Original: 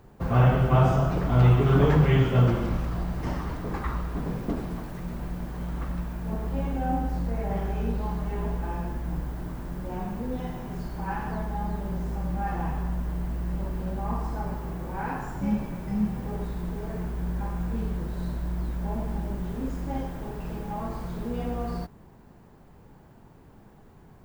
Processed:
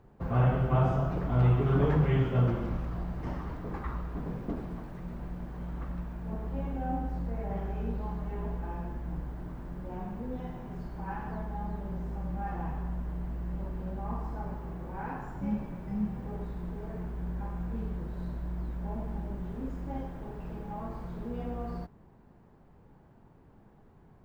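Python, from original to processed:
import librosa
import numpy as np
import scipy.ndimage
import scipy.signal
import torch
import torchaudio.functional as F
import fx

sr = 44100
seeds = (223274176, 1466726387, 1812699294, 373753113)

y = fx.high_shelf(x, sr, hz=3700.0, db=-12.0)
y = y * librosa.db_to_amplitude(-5.5)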